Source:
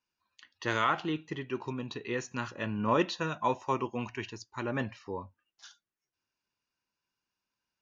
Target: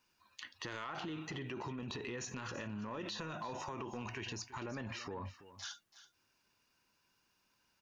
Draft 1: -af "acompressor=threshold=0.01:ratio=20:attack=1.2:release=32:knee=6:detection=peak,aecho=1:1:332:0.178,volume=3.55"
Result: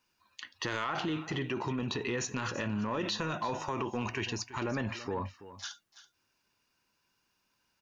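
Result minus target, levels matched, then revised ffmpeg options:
compression: peak gain reduction -9.5 dB
-af "acompressor=threshold=0.00316:ratio=20:attack=1.2:release=32:knee=6:detection=peak,aecho=1:1:332:0.178,volume=3.55"

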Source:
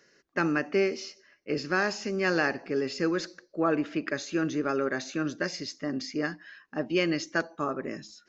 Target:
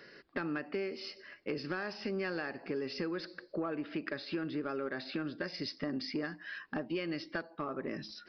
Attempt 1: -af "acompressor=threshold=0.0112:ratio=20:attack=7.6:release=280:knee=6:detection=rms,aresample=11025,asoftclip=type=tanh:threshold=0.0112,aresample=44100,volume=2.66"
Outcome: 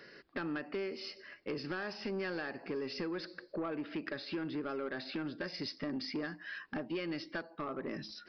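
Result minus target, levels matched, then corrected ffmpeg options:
saturation: distortion +10 dB
-af "acompressor=threshold=0.0112:ratio=20:attack=7.6:release=280:knee=6:detection=rms,aresample=11025,asoftclip=type=tanh:threshold=0.0251,aresample=44100,volume=2.66"

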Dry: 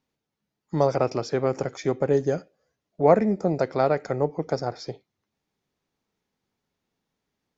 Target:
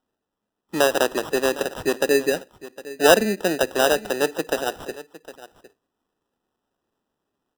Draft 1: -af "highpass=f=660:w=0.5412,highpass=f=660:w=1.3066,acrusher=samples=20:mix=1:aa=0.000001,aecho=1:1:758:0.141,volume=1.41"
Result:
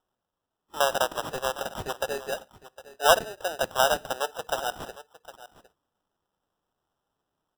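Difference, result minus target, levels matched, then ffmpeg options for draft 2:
250 Hz band -11.5 dB
-af "highpass=f=230:w=0.5412,highpass=f=230:w=1.3066,acrusher=samples=20:mix=1:aa=0.000001,aecho=1:1:758:0.141,volume=1.41"

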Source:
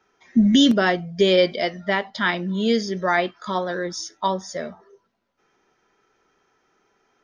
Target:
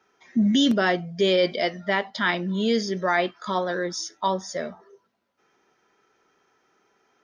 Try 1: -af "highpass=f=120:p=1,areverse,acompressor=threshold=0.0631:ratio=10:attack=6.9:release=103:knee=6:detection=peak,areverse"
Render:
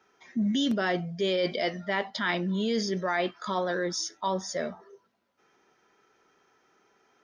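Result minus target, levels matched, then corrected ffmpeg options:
compression: peak gain reduction +7.5 dB
-af "highpass=f=120:p=1,areverse,acompressor=threshold=0.168:ratio=10:attack=6.9:release=103:knee=6:detection=peak,areverse"

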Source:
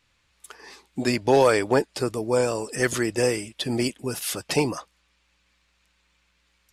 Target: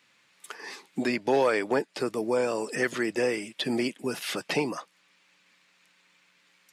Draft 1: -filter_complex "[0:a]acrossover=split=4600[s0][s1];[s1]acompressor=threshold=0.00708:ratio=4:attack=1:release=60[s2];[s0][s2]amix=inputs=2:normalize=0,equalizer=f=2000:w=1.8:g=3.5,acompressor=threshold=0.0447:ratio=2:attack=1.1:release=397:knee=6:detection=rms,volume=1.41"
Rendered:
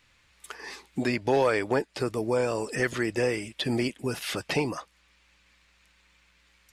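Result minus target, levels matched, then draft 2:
125 Hz band +8.0 dB
-filter_complex "[0:a]acrossover=split=4600[s0][s1];[s1]acompressor=threshold=0.00708:ratio=4:attack=1:release=60[s2];[s0][s2]amix=inputs=2:normalize=0,equalizer=f=2000:w=1.8:g=3.5,acompressor=threshold=0.0447:ratio=2:attack=1.1:release=397:knee=6:detection=rms,highpass=f=160:w=0.5412,highpass=f=160:w=1.3066,volume=1.41"

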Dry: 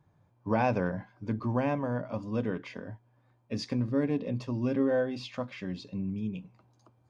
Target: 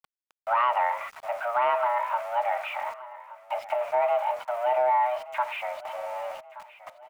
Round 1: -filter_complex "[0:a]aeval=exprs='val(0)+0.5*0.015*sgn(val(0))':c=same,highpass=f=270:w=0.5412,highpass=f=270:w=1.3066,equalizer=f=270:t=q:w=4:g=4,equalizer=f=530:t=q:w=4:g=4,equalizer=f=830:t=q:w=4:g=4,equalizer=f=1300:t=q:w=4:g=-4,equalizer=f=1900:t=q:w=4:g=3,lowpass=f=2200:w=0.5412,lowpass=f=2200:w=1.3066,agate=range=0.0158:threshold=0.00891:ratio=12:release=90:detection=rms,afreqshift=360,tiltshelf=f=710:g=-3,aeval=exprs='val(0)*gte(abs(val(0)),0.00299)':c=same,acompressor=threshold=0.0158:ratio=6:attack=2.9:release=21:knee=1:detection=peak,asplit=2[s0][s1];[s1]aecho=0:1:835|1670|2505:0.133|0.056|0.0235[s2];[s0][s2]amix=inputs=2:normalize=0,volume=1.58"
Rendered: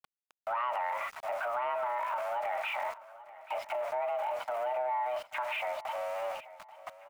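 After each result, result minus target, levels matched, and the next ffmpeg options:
compression: peak gain reduction +9.5 dB; echo 340 ms early
-filter_complex "[0:a]aeval=exprs='val(0)+0.5*0.015*sgn(val(0))':c=same,highpass=f=270:w=0.5412,highpass=f=270:w=1.3066,equalizer=f=270:t=q:w=4:g=4,equalizer=f=530:t=q:w=4:g=4,equalizer=f=830:t=q:w=4:g=4,equalizer=f=1300:t=q:w=4:g=-4,equalizer=f=1900:t=q:w=4:g=3,lowpass=f=2200:w=0.5412,lowpass=f=2200:w=1.3066,agate=range=0.0158:threshold=0.00891:ratio=12:release=90:detection=rms,afreqshift=360,tiltshelf=f=710:g=-3,aeval=exprs='val(0)*gte(abs(val(0)),0.00299)':c=same,acompressor=threshold=0.0596:ratio=6:attack=2.9:release=21:knee=1:detection=peak,asplit=2[s0][s1];[s1]aecho=0:1:835|1670|2505:0.133|0.056|0.0235[s2];[s0][s2]amix=inputs=2:normalize=0,volume=1.58"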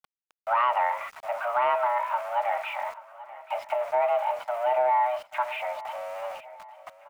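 echo 340 ms early
-filter_complex "[0:a]aeval=exprs='val(0)+0.5*0.015*sgn(val(0))':c=same,highpass=f=270:w=0.5412,highpass=f=270:w=1.3066,equalizer=f=270:t=q:w=4:g=4,equalizer=f=530:t=q:w=4:g=4,equalizer=f=830:t=q:w=4:g=4,equalizer=f=1300:t=q:w=4:g=-4,equalizer=f=1900:t=q:w=4:g=3,lowpass=f=2200:w=0.5412,lowpass=f=2200:w=1.3066,agate=range=0.0158:threshold=0.00891:ratio=12:release=90:detection=rms,afreqshift=360,tiltshelf=f=710:g=-3,aeval=exprs='val(0)*gte(abs(val(0)),0.00299)':c=same,acompressor=threshold=0.0596:ratio=6:attack=2.9:release=21:knee=1:detection=peak,asplit=2[s0][s1];[s1]aecho=0:1:1175|2350|3525:0.133|0.056|0.0235[s2];[s0][s2]amix=inputs=2:normalize=0,volume=1.58"

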